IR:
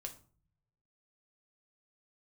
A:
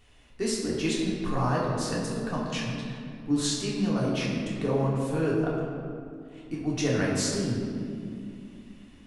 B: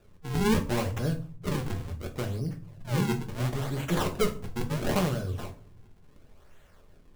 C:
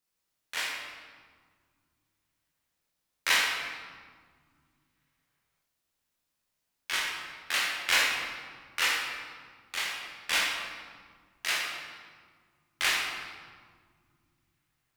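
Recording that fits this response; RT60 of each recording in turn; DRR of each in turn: B; 2.5, 0.45, 1.8 seconds; −6.0, 3.5, −4.0 decibels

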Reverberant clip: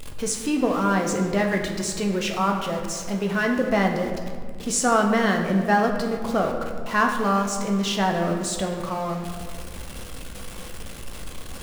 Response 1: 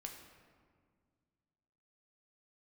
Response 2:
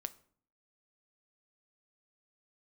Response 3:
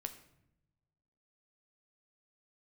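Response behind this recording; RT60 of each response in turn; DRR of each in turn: 1; 1.9, 0.55, 0.80 seconds; 1.5, 11.5, 6.5 decibels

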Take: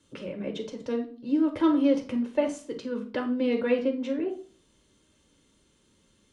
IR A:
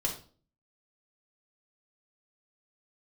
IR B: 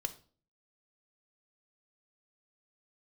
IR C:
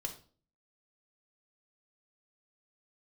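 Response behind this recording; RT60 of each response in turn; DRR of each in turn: C; 0.40, 0.40, 0.40 seconds; −1.0, 8.5, 3.0 decibels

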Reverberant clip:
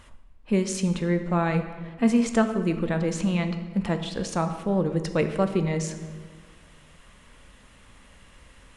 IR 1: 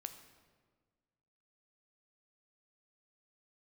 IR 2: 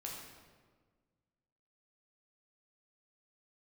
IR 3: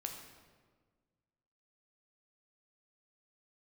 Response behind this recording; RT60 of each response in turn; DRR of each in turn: 1; 1.6, 1.5, 1.5 seconds; 7.5, −2.5, 2.5 decibels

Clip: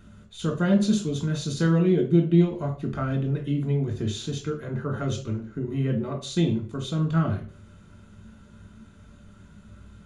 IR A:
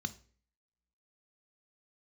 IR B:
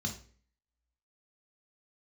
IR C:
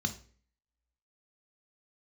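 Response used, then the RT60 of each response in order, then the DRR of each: B; 0.45, 0.45, 0.45 seconds; 11.0, 1.0, 6.0 decibels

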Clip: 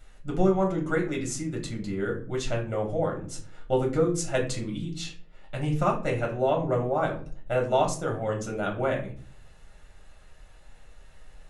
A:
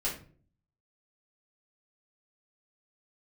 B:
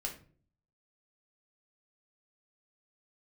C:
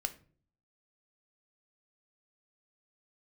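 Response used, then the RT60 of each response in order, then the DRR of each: B; 0.45, 0.45, 0.45 seconds; −7.0, 0.0, 8.0 decibels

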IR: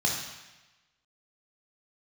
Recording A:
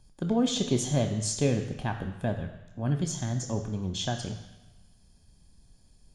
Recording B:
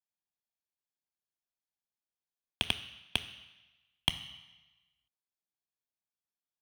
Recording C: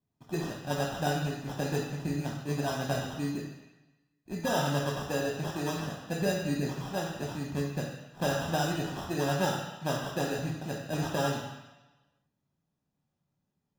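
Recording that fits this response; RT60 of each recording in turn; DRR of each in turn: C; 1.1, 1.1, 1.1 seconds; 5.5, 10.5, −2.0 decibels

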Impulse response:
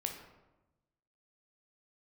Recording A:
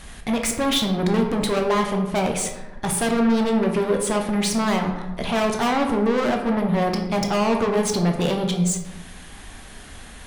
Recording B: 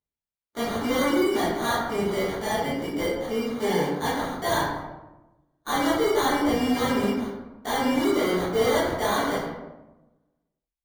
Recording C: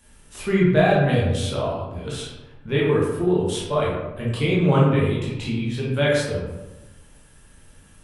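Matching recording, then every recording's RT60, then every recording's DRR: A; 1.0, 1.0, 1.0 seconds; 2.5, −11.0, −6.5 decibels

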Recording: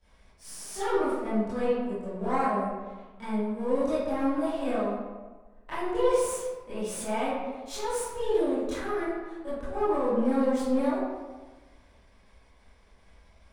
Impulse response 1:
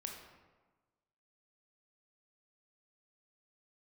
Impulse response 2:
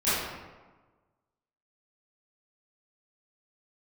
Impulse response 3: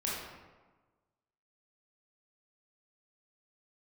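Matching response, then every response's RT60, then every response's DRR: 2; 1.3, 1.3, 1.3 seconds; 1.5, −15.5, −6.0 decibels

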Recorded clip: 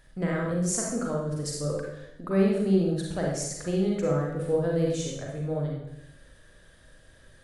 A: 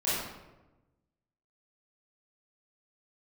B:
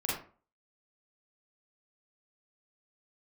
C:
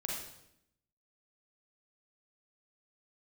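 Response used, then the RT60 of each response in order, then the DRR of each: C; 1.1, 0.40, 0.80 seconds; −11.5, −6.5, −2.5 decibels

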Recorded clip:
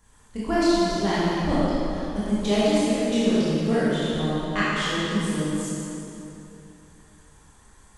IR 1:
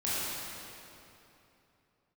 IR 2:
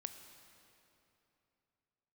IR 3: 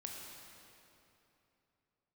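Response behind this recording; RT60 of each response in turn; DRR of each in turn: 1; 3.0, 3.0, 3.0 seconds; −10.5, 7.5, −1.0 decibels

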